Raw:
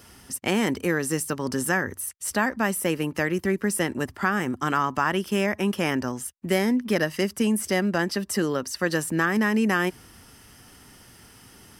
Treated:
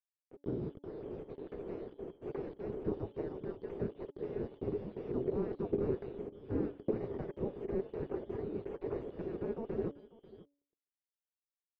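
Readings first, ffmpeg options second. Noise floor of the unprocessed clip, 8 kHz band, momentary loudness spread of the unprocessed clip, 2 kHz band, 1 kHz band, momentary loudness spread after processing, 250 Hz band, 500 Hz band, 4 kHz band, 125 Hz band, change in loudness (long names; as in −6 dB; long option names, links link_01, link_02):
−52 dBFS, below −40 dB, 5 LU, −34.0 dB, −23.5 dB, 10 LU, −15.5 dB, −10.0 dB, below −30 dB, −12.5 dB, −14.5 dB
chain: -af "afftfilt=real='real(if(lt(b,272),68*(eq(floor(b/68),0)*2+eq(floor(b/68),1)*3+eq(floor(b/68),2)*0+eq(floor(b/68),3)*1)+mod(b,68),b),0)':imag='imag(if(lt(b,272),68*(eq(floor(b/68),0)*2+eq(floor(b/68),1)*3+eq(floor(b/68),2)*0+eq(floor(b/68),3)*1)+mod(b,68),b),0)':win_size=2048:overlap=0.75,flanger=delay=4.8:depth=5:regen=63:speed=0.52:shape=sinusoidal,highpass=frequency=120:poles=1,dynaudnorm=framelen=350:gausssize=9:maxgain=16dB,asoftclip=type=hard:threshold=-19dB,acrusher=bits=4:mix=0:aa=0.5,aecho=1:1:541:0.112,afftfilt=real='re*lt(hypot(re,im),0.112)':imag='im*lt(hypot(re,im),0.112)':win_size=1024:overlap=0.75,lowpass=frequency=410:width_type=q:width=4.9,aemphasis=mode=reproduction:type=75fm,bandreject=frequency=284.8:width_type=h:width=4,bandreject=frequency=569.6:width_type=h:width=4,bandreject=frequency=854.4:width_type=h:width=4,volume=2.5dB"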